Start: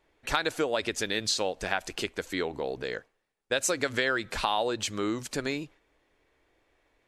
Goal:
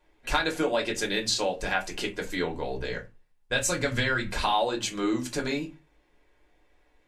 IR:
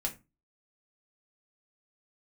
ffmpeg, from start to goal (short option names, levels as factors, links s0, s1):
-filter_complex "[0:a]asettb=1/sr,asplit=3[s0][s1][s2];[s0]atrim=end=2.024[s3];[s1]atrim=start=2.02:end=4.32,asetpts=PTS-STARTPTS,afade=t=in:d=0.004:c=qsin,afade=t=out:st=2.296:d=0.004:c=qsin,asubboost=boost=9:cutoff=140[s4];[s2]atrim=start=4.316[s5];[s3][s4]acrossfade=d=0.004:c1=hsin:c2=qsin[s6];[s6][s5]acrossfade=d=0.004:c1=qsin:c2=hsin[s7];[1:a]atrim=start_sample=2205,asetrate=48510,aresample=44100[s8];[s7][s8]afir=irnorm=-1:irlink=0"